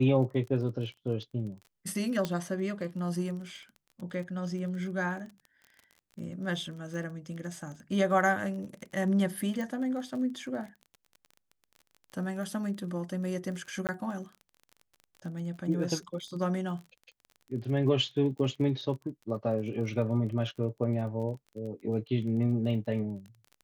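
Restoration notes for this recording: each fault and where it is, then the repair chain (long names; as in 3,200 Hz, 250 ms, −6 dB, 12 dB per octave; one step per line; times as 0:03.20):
surface crackle 27 per second −40 dBFS
0:02.25: click −17 dBFS
0:09.61: click
0:13.87–0:13.89: drop-out 18 ms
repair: click removal
repair the gap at 0:13.87, 18 ms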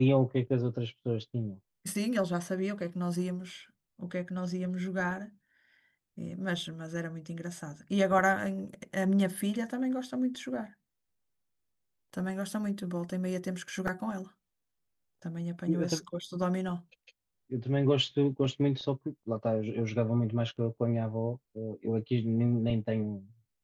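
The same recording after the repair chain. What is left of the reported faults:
0:09.61: click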